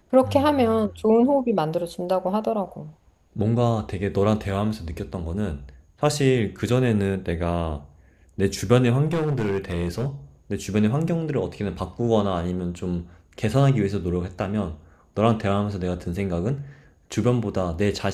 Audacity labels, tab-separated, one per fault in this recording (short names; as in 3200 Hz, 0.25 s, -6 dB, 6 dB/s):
9.060000	10.060000	clipped -19.5 dBFS